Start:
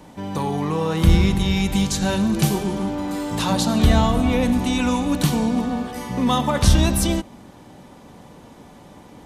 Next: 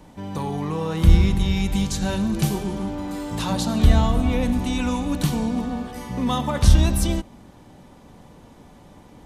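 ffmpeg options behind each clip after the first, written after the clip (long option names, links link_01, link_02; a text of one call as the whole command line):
ffmpeg -i in.wav -af "lowshelf=frequency=78:gain=10.5,volume=-4.5dB" out.wav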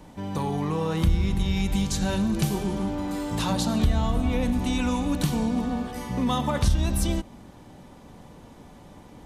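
ffmpeg -i in.wav -af "acompressor=threshold=-21dB:ratio=2.5" out.wav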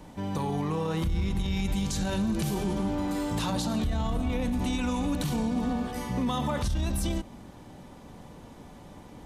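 ffmpeg -i in.wav -af "alimiter=limit=-21dB:level=0:latency=1:release=27" out.wav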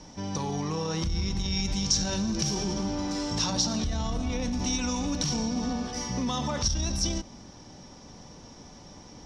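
ffmpeg -i in.wav -af "lowpass=frequency=5600:width_type=q:width=14,volume=-1.5dB" out.wav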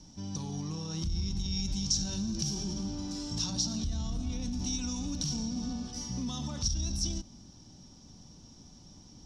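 ffmpeg -i in.wav -af "equalizer=frequency=500:width_type=o:width=1:gain=-11,equalizer=frequency=1000:width_type=o:width=1:gain=-7,equalizer=frequency=2000:width_type=o:width=1:gain=-12,volume=-3dB" out.wav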